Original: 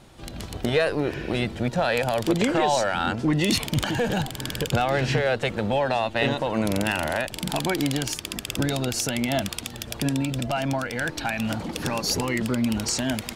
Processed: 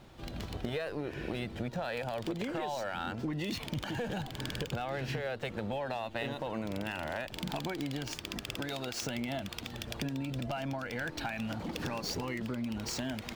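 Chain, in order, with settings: median filter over 5 samples; 8.56–9.02 low shelf 320 Hz -12 dB; compressor, threshold -29 dBFS, peak gain reduction 11.5 dB; gain -4 dB

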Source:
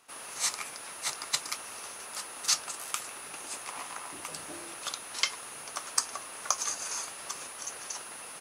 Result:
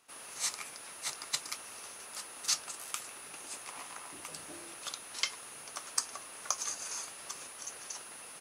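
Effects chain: bell 1000 Hz -2.5 dB 1.7 oct; gain -4 dB

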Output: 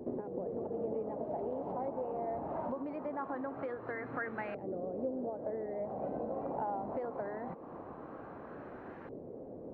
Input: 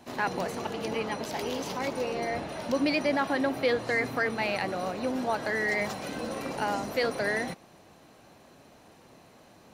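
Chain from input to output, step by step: high shelf 2500 Hz -10.5 dB; compressor 16:1, threshold -43 dBFS, peak gain reduction 21.5 dB; LFO low-pass saw up 0.22 Hz 430–1700 Hz; wow and flutter 28 cents; band noise 230–560 Hz -56 dBFS; gain +5 dB

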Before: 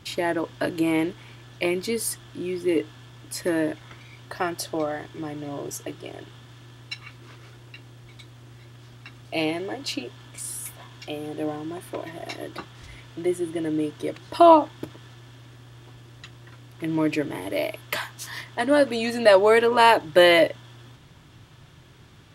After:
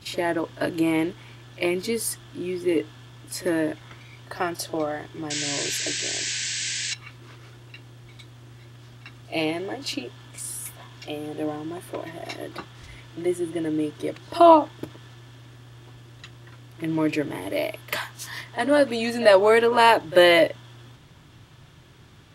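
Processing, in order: pre-echo 43 ms -18 dB; painted sound noise, 5.3–6.94, 1500–8200 Hz -29 dBFS

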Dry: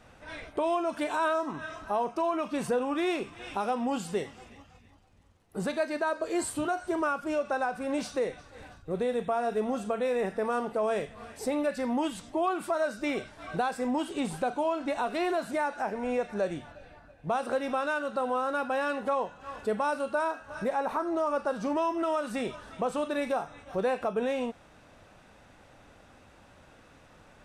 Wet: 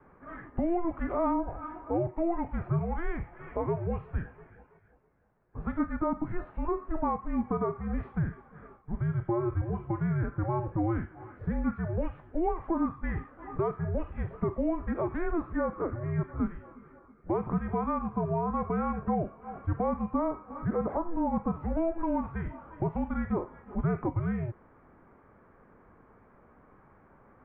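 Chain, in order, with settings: vibrato 1.3 Hz 8.8 cents; mistuned SSB -340 Hz 250–2100 Hz

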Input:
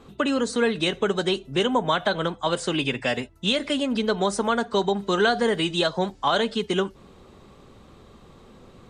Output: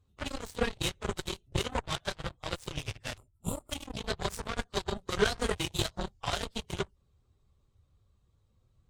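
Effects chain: phase scrambler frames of 50 ms; tone controls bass +4 dB, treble +9 dB; added harmonics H 3 -31 dB, 7 -17 dB, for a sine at -5 dBFS; spectral gain 3.17–3.71, 1400–7000 Hz -21 dB; resonant low shelf 140 Hz +12.5 dB, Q 1.5; gain -7 dB

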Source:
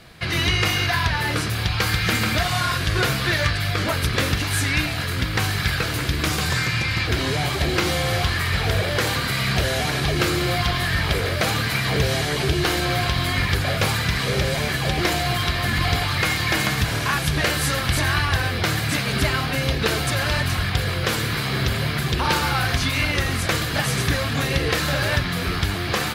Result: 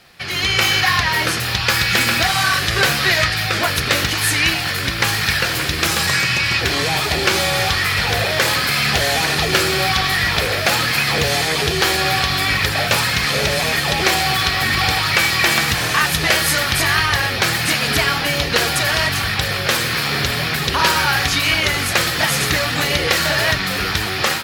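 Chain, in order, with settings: wide varispeed 1.07×; AGC; low shelf 390 Hz -10 dB

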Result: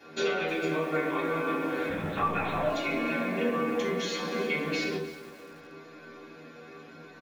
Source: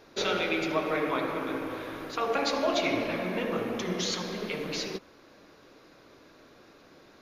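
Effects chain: compressor, threshold -33 dBFS, peak gain reduction 10.5 dB; metallic resonator 77 Hz, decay 0.28 s, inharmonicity 0.002; 1.89–2.7 LPC vocoder at 8 kHz whisper; doubler 33 ms -13 dB; reverb RT60 0.45 s, pre-delay 3 ms, DRR -5.5 dB; lo-fi delay 0.311 s, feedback 35%, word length 8-bit, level -15 dB; gain +6.5 dB

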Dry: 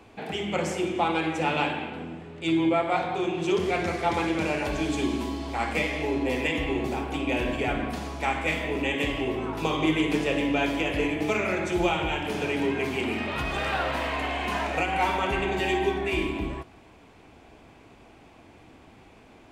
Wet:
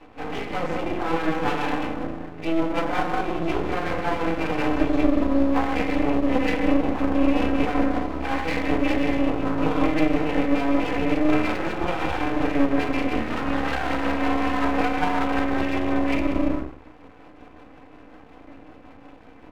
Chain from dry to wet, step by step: LPF 2500 Hz; notches 50/100/150/200/250/300/350/400/450 Hz; comb 3.9 ms, depth 48%; limiter -20 dBFS, peak gain reduction 7.5 dB; tremolo 5.4 Hz, depth 42%; FDN reverb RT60 0.53 s, low-frequency decay 1×, high-frequency decay 0.35×, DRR -8 dB; half-wave rectifier

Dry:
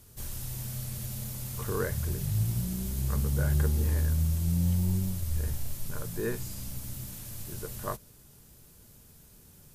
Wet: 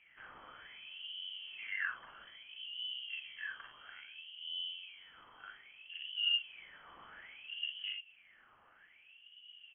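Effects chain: compressor 3:1, threshold -39 dBFS, peak gain reduction 13 dB; early reflections 41 ms -5 dB, 57 ms -7.5 dB; wah 0.61 Hz 290–2100 Hz, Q 6.6; inverted band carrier 3200 Hz; gain +14 dB

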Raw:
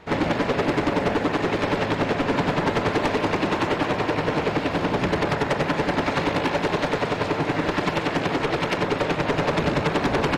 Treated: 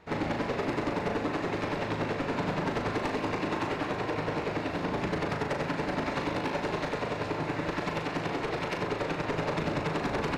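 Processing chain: bell 3200 Hz -4 dB 0.21 oct; flutter echo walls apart 6.5 m, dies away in 0.31 s; gain -9 dB

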